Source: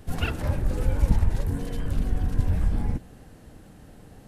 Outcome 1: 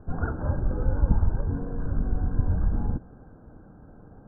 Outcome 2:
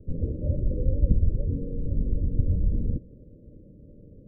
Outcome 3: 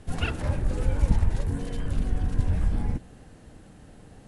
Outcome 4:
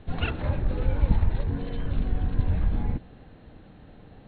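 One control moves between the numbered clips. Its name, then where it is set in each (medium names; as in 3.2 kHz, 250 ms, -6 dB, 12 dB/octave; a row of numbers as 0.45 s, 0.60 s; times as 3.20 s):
Chebyshev low-pass, frequency: 1.6 kHz, 590 Hz, 11 kHz, 4.2 kHz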